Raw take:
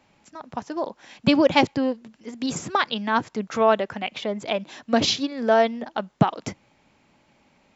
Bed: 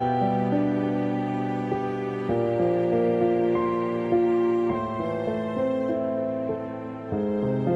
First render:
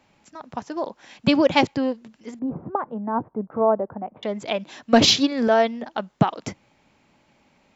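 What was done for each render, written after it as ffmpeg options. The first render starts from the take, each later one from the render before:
-filter_complex "[0:a]asettb=1/sr,asplit=3[s0][s1][s2];[s0]atrim=end=2.394[s3];[s1]atrim=start=2.39:end=4.23,asetpts=PTS-STARTPTS,afade=t=in:d=0.004:c=qsin,afade=t=out:st=1.836:d=0.004:c=qsin,lowpass=f=1000:w=0.5412,lowpass=f=1000:w=1.3066[s4];[s2]atrim=start=4.226[s5];[s3][s4]acrossfade=d=0.004:c1=hsin:c2=qsin[s6];[s6][s5]acrossfade=d=0.004:c1=qsin:c2=hsin,asettb=1/sr,asplit=3[s7][s8][s9];[s7]atrim=end=4.934[s10];[s8]atrim=start=4.93:end=5.48,asetpts=PTS-STARTPTS,afade=t=in:d=0.004:c=qsin,afade=t=out:st=0.546:d=0.004:c=qsin,acontrast=64[s11];[s9]atrim=start=5.476[s12];[s10][s11]acrossfade=d=0.004:c1=hsin:c2=qsin[s13];[s13][s12]acrossfade=d=0.004:c1=qsin:c2=hsin"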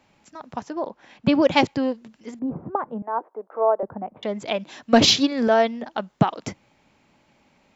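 -filter_complex "[0:a]asettb=1/sr,asplit=3[s0][s1][s2];[s0]atrim=end=0.704[s3];[s1]atrim=start=0.7:end=1.42,asetpts=PTS-STARTPTS,afade=t=in:d=0.004:c=qsin,afade=t=out:st=0.716:d=0.004:c=qsin,lowpass=f=2000:p=1[s4];[s2]atrim=start=1.416[s5];[s3][s4]acrossfade=d=0.004:c1=hsin:c2=qsin[s6];[s6][s5]acrossfade=d=0.004:c1=qsin:c2=hsin,asettb=1/sr,asplit=3[s7][s8][s9];[s7]atrim=end=3.024[s10];[s8]atrim=start=3.02:end=3.83,asetpts=PTS-STARTPTS,afade=t=in:d=0.004:c=qsin,afade=t=out:st=0.806:d=0.004:c=qsin,highpass=f=410:w=0.5412,highpass=f=410:w=1.3066[s11];[s9]atrim=start=3.826[s12];[s10][s11]acrossfade=d=0.004:c1=hsin:c2=qsin[s13];[s13][s12]acrossfade=d=0.004:c1=qsin:c2=hsin"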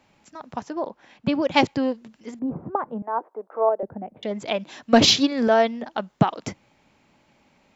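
-filter_complex "[0:a]asettb=1/sr,asplit=3[s0][s1][s2];[s0]atrim=end=3.694[s3];[s1]atrim=start=3.69:end=4.31,asetpts=PTS-STARTPTS,afade=t=in:d=0.004:c=qsin,afade=t=out:st=0.616:d=0.004:c=qsin,equalizer=f=1100:w=1.7:g=-11.5[s4];[s2]atrim=start=4.306[s5];[s3][s4]acrossfade=d=0.004:c1=hsin:c2=qsin[s6];[s6][s5]acrossfade=d=0.004:c1=qsin:c2=hsin,asplit=2[s7][s8];[s7]atrim=end=1.54,asetpts=PTS-STARTPTS,afade=t=out:st=0.8:d=0.74:silence=0.446684[s9];[s8]atrim=start=1.54,asetpts=PTS-STARTPTS,afade=t=in:d=0.004:c=hsin:silence=0.446684[s10];[s9][s10]concat=n=2:v=0:a=1"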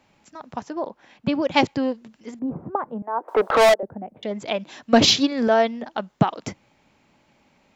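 -filter_complex "[0:a]asettb=1/sr,asplit=3[s0][s1][s2];[s0]atrim=end=3.284[s3];[s1]atrim=start=3.28:end=3.74,asetpts=PTS-STARTPTS,afade=t=in:d=0.004:c=qsin,afade=t=out:st=0.456:d=0.004:c=qsin,asplit=2[s4][s5];[s5]highpass=f=720:p=1,volume=56.2,asoftclip=type=tanh:threshold=0.398[s6];[s4][s6]amix=inputs=2:normalize=0,lowpass=f=6200:p=1,volume=0.501[s7];[s2]atrim=start=3.736[s8];[s3][s7]acrossfade=d=0.004:c1=hsin:c2=qsin[s9];[s9][s8]acrossfade=d=0.004:c1=qsin:c2=hsin"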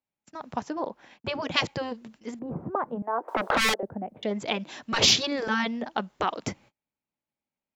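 -af "agate=range=0.0224:threshold=0.00282:ratio=16:detection=peak,afftfilt=real='re*lt(hypot(re,im),0.501)':imag='im*lt(hypot(re,im),0.501)':win_size=1024:overlap=0.75"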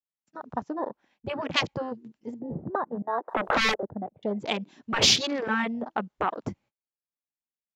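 -af "afwtdn=0.0178"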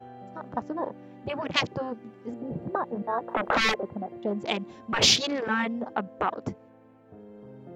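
-filter_complex "[1:a]volume=0.0841[s0];[0:a][s0]amix=inputs=2:normalize=0"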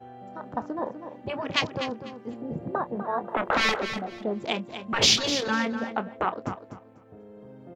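-filter_complex "[0:a]asplit=2[s0][s1];[s1]adelay=27,volume=0.211[s2];[s0][s2]amix=inputs=2:normalize=0,aecho=1:1:247|494|741:0.316|0.0664|0.0139"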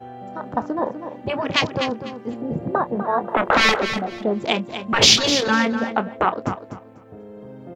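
-af "volume=2.37,alimiter=limit=0.794:level=0:latency=1"

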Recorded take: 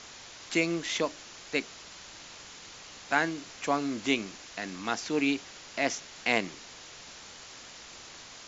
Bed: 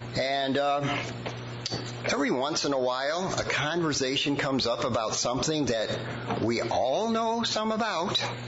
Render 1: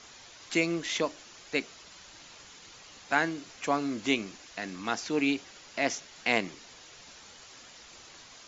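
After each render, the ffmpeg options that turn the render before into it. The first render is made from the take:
-af "afftdn=nr=6:nf=-48"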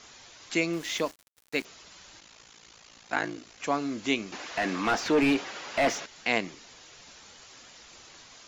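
-filter_complex "[0:a]asettb=1/sr,asplit=3[s0][s1][s2];[s0]atrim=end=0.734[s3];[s1]atrim=start=0.73:end=1.65,asetpts=PTS-STARTPTS,afade=t=in:d=0.004:c=qsin,afade=t=out:st=0.916:d=0.004:c=qsin,aeval=exprs='val(0)*gte(abs(val(0)),0.00841)':c=same[s4];[s2]atrim=start=1.646[s5];[s3][s4]acrossfade=d=0.004:c1=hsin:c2=qsin[s6];[s6][s5]acrossfade=d=0.004:c1=qsin:c2=hsin,asplit=3[s7][s8][s9];[s7]afade=t=out:st=2.2:d=0.02[s10];[s8]aeval=exprs='val(0)*sin(2*PI*28*n/s)':c=same,afade=t=in:st=2.2:d=0.02,afade=t=out:st=3.58:d=0.02[s11];[s9]afade=t=in:st=3.58:d=0.02[s12];[s10][s11][s12]amix=inputs=3:normalize=0,asettb=1/sr,asplit=3[s13][s14][s15];[s13]atrim=end=4.324[s16];[s14]atrim=start=4.32:end=6.06,asetpts=PTS-STARTPTS,afade=t=in:d=0.004:c=qsin,afade=t=out:st=1.736:d=0.004:c=qsin,asplit=2[s17][s18];[s18]highpass=f=720:p=1,volume=17.8,asoftclip=type=tanh:threshold=0.224[s19];[s17][s19]amix=inputs=2:normalize=0,lowpass=f=1200:p=1,volume=0.501[s20];[s15]atrim=start=6.056[s21];[s16][s20]acrossfade=d=0.004:c1=hsin:c2=qsin[s22];[s22][s21]acrossfade=d=0.004:c1=qsin:c2=hsin"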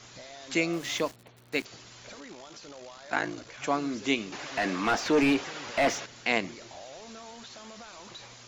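-filter_complex "[1:a]volume=0.1[s0];[0:a][s0]amix=inputs=2:normalize=0"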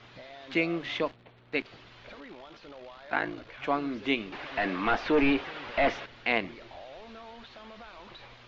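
-af "lowpass=f=3600:w=0.5412,lowpass=f=3600:w=1.3066,asubboost=boost=4:cutoff=63"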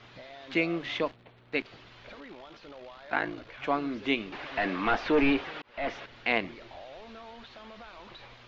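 -filter_complex "[0:a]asplit=2[s0][s1];[s0]atrim=end=5.62,asetpts=PTS-STARTPTS,afade=t=out:st=5.616:d=0.004:c=hsin[s2];[s1]atrim=start=5.62,asetpts=PTS-STARTPTS,afade=t=in:d=0.54[s3];[s2][s3]concat=n=2:v=0:a=1"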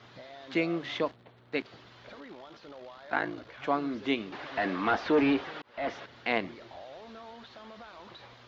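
-af "highpass=78,equalizer=f=2500:t=o:w=0.58:g=-5.5"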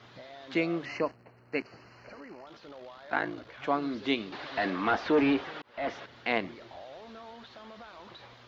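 -filter_complex "[0:a]asettb=1/sr,asplit=3[s0][s1][s2];[s0]atrim=end=0.854[s3];[s1]atrim=start=0.85:end=2.47,asetpts=PTS-STARTPTS,afade=t=in:d=0.004:c=qsin,afade=t=out:st=1.616:d=0.004:c=qsin,asuperstop=centerf=3500:order=12:qfactor=2.9[s4];[s2]atrim=start=2.466[s5];[s3][s4]acrossfade=d=0.004:c1=hsin:c2=qsin[s6];[s6][s5]acrossfade=d=0.004:c1=qsin:c2=hsin,asettb=1/sr,asplit=3[s7][s8][s9];[s7]atrim=end=3.824[s10];[s8]atrim=start=3.82:end=4.7,asetpts=PTS-STARTPTS,afade=t=in:d=0.004:c=qsin,afade=t=out:st=0.876:d=0.004:c=qsin,equalizer=f=4200:t=o:w=0.58:g=6[s11];[s9]atrim=start=4.696[s12];[s10][s11]acrossfade=d=0.004:c1=hsin:c2=qsin[s13];[s13][s12]acrossfade=d=0.004:c1=qsin:c2=hsin"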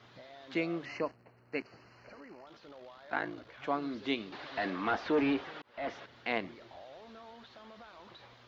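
-af "volume=0.596"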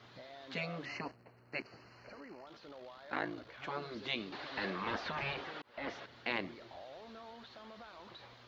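-af "afftfilt=real='re*lt(hypot(re,im),0.1)':imag='im*lt(hypot(re,im),0.1)':win_size=1024:overlap=0.75,equalizer=f=4300:w=6.2:g=3.5"

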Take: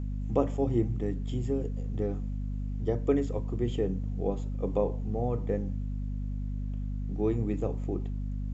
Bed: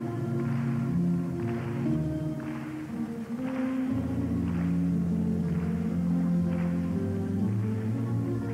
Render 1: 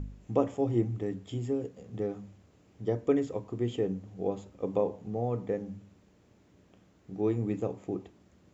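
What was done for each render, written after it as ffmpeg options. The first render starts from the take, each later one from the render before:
-af "bandreject=f=50:t=h:w=4,bandreject=f=100:t=h:w=4,bandreject=f=150:t=h:w=4,bandreject=f=200:t=h:w=4,bandreject=f=250:t=h:w=4"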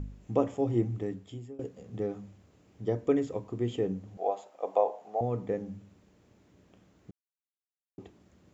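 -filter_complex "[0:a]asettb=1/sr,asplit=3[s0][s1][s2];[s0]atrim=end=4.174[s3];[s1]atrim=start=4.17:end=5.21,asetpts=PTS-STARTPTS,afade=t=in:d=0.004:c=qsin,afade=t=out:st=1.036:d=0.004:c=qsin,highpass=f=690:t=q:w=4.3[s4];[s2]atrim=start=5.206[s5];[s3][s4]acrossfade=d=0.004:c1=hsin:c2=qsin[s6];[s6][s5]acrossfade=d=0.004:c1=qsin:c2=hsin,asplit=4[s7][s8][s9][s10];[s7]atrim=end=1.59,asetpts=PTS-STARTPTS,afade=t=out:st=1.01:d=0.58:silence=0.0944061[s11];[s8]atrim=start=1.59:end=7.11,asetpts=PTS-STARTPTS,afade=t=in:d=0.004:c=hsin:silence=0.0944061,afade=t=out:st=5.516:d=0.004:c=hsin[s12];[s9]atrim=start=7.11:end=7.98,asetpts=PTS-STARTPTS,volume=0[s13];[s10]atrim=start=7.98,asetpts=PTS-STARTPTS,afade=t=in:d=0.004:c=hsin[s14];[s11][s12][s13][s14]concat=n=4:v=0:a=1"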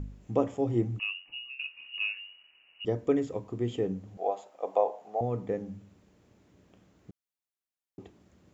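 -filter_complex "[0:a]asettb=1/sr,asplit=3[s0][s1][s2];[s0]atrim=end=0.994[s3];[s1]atrim=start=0.99:end=2.85,asetpts=PTS-STARTPTS,afade=t=in:d=0.004:c=qsin,afade=t=out:st=1.856:d=0.004:c=qsin,lowpass=f=2600:t=q:w=0.5098,lowpass=f=2600:t=q:w=0.6013,lowpass=f=2600:t=q:w=0.9,lowpass=f=2600:t=q:w=2.563,afreqshift=-3000[s4];[s2]atrim=start=2.846[s5];[s3][s4]acrossfade=d=0.004:c1=hsin:c2=qsin[s6];[s6][s5]acrossfade=d=0.004:c1=qsin:c2=hsin"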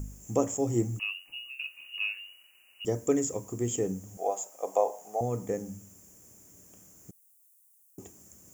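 -af "aexciter=amount=13.1:drive=9.6:freq=6300"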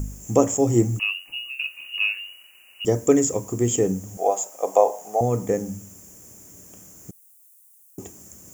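-af "volume=2.82"

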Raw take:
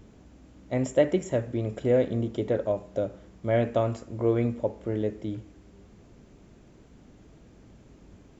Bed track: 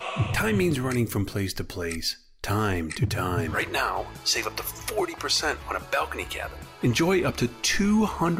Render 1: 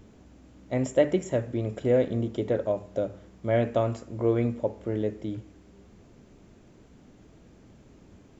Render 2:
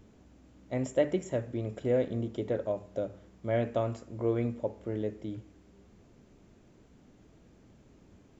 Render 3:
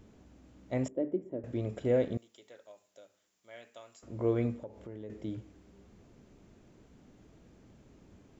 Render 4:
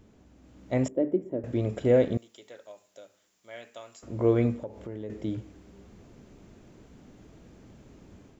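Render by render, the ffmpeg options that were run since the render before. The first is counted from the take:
-af "bandreject=f=50:t=h:w=4,bandreject=f=100:t=h:w=4,bandreject=f=150:t=h:w=4"
-af "volume=0.562"
-filter_complex "[0:a]asettb=1/sr,asplit=3[s0][s1][s2];[s0]atrim=end=0.884[s3];[s1]atrim=start=0.88:end=1.44,asetpts=PTS-STARTPTS,afade=t=in:d=0.004:c=qsin,afade=t=out:st=0.556:d=0.004:c=qsin,bandpass=f=310:t=q:w=2.1[s4];[s2]atrim=start=1.436[s5];[s3][s4]acrossfade=d=0.004:c1=hsin:c2=qsin[s6];[s6][s5]acrossfade=d=0.004:c1=qsin:c2=hsin,asettb=1/sr,asplit=3[s7][s8][s9];[s7]atrim=end=2.174[s10];[s8]atrim=start=2.17:end=4.03,asetpts=PTS-STARTPTS,afade=t=in:d=0.004:c=qsin,afade=t=out:st=1.856:d=0.004:c=qsin,aderivative[s11];[s9]atrim=start=4.026[s12];[s10][s11]acrossfade=d=0.004:c1=hsin:c2=qsin[s13];[s13][s12]acrossfade=d=0.004:c1=qsin:c2=hsin,asettb=1/sr,asplit=3[s14][s15][s16];[s14]atrim=end=4.564[s17];[s15]atrim=start=4.56:end=5.1,asetpts=PTS-STARTPTS,afade=t=in:d=0.004:c=qsin,afade=t=out:st=0.536:d=0.004:c=qsin,acompressor=threshold=0.00562:ratio=2.5:attack=3.2:release=140:knee=1:detection=peak[s18];[s16]atrim=start=5.096[s19];[s17][s18]acrossfade=d=0.004:c1=hsin:c2=qsin[s20];[s20][s19]acrossfade=d=0.004:c1=qsin:c2=hsin"
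-af "dynaudnorm=f=360:g=3:m=2.11"

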